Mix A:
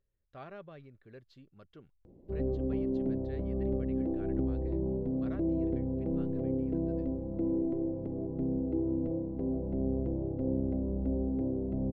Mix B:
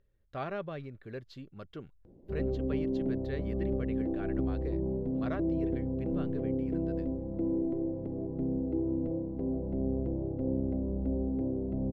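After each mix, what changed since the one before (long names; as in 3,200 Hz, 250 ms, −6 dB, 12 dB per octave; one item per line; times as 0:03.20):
speech +10.0 dB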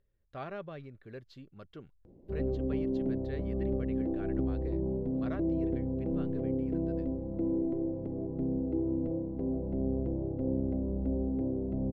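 speech −4.0 dB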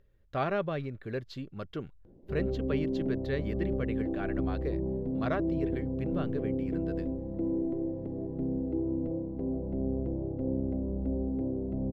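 speech +10.5 dB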